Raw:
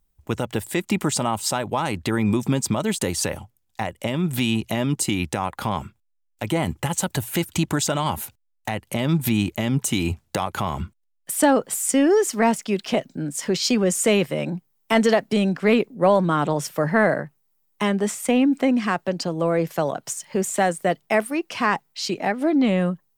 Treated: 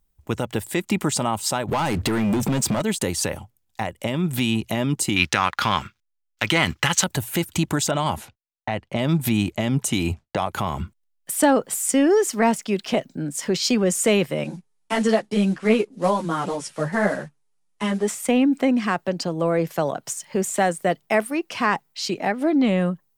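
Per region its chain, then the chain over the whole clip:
0:01.68–0:02.82: mains-hum notches 50/100 Hz + downward compressor, threshold −23 dBFS + leveller curve on the samples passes 3
0:05.16–0:07.04: mu-law and A-law mismatch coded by A + flat-topped bell 2,700 Hz +12.5 dB 2.8 octaves
0:07.91–0:10.49: low-pass that shuts in the quiet parts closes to 1,400 Hz, open at −18.5 dBFS + parametric band 660 Hz +4.5 dB 0.25 octaves + downward expander −51 dBFS
0:14.44–0:18.08: one scale factor per block 5 bits + Butterworth low-pass 11,000 Hz 72 dB per octave + string-ensemble chorus
whole clip: no processing

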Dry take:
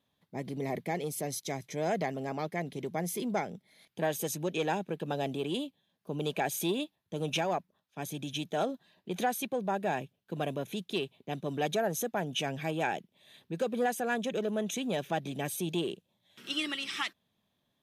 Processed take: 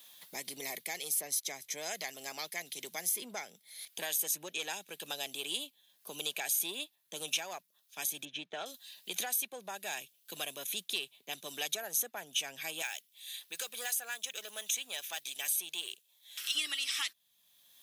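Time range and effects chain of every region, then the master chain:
0:08.25–0:08.66: low-pass filter 1,900 Hz + transient designer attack +3 dB, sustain −4 dB
0:12.82–0:16.55: high-pass filter 1,400 Hz 6 dB per octave + noise that follows the level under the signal 34 dB
whole clip: first difference; multiband upward and downward compressor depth 70%; level +8.5 dB

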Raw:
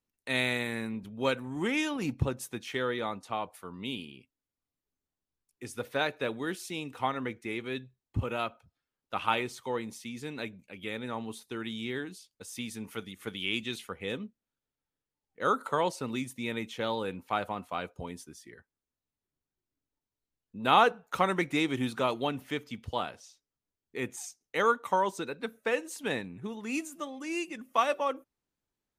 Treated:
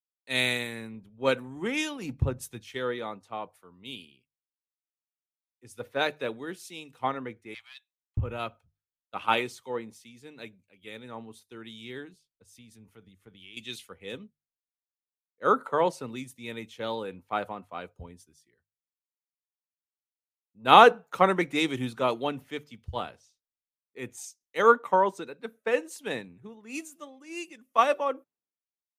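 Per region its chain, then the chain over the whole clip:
0:07.54–0:08.17: Butterworth high-pass 720 Hz 72 dB per octave + highs frequency-modulated by the lows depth 0.2 ms
0:12.13–0:13.57: spectral tilt −1.5 dB per octave + downward compressor 3 to 1, threshold −38 dBFS
whole clip: parametric band 470 Hz +2.5 dB 0.77 octaves; mains-hum notches 50/100/150 Hz; multiband upward and downward expander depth 100%; level −2 dB

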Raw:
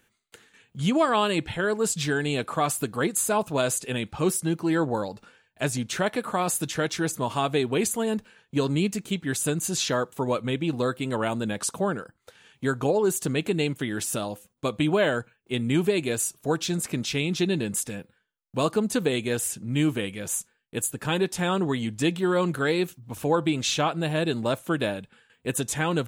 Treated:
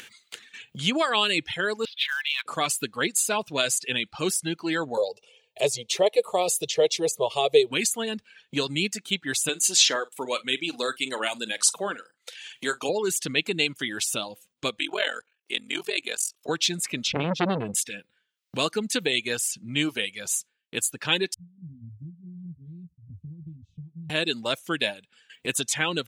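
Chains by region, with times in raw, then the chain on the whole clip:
0:01.85–0:02.46: elliptic band-pass filter 1,000–3,700 Hz + floating-point word with a short mantissa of 2 bits
0:04.97–0:07.71: parametric band 460 Hz +14.5 dB 1.1 octaves + phaser with its sweep stopped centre 630 Hz, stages 4
0:09.49–0:12.89: high-pass filter 280 Hz + parametric band 8,500 Hz +5.5 dB 1.4 octaves + double-tracking delay 46 ms −11 dB
0:14.79–0:16.49: high-pass filter 420 Hz + ring modulation 22 Hz
0:17.07–0:17.75: spectral tilt −4.5 dB per octave + upward compression, threshold −28 dBFS + saturating transformer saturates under 750 Hz
0:21.34–0:24.10: inverse Chebyshev low-pass filter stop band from 550 Hz, stop band 70 dB + double-tracking delay 12 ms −3 dB
whole clip: meter weighting curve D; reverb reduction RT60 0.86 s; upward compression, threshold −30 dBFS; level −2.5 dB

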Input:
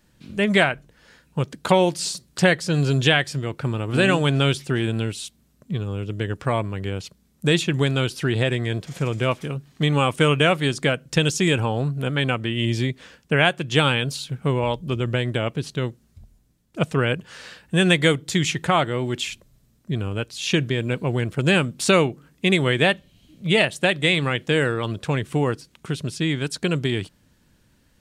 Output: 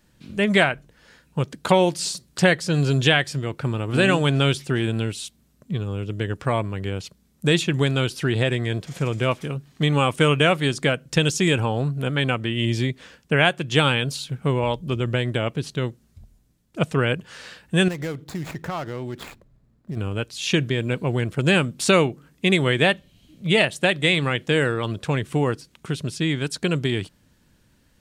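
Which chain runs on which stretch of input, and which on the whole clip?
0:17.88–0:19.97: running median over 15 samples + downward compressor 3 to 1, threshold −28 dBFS
whole clip: no processing

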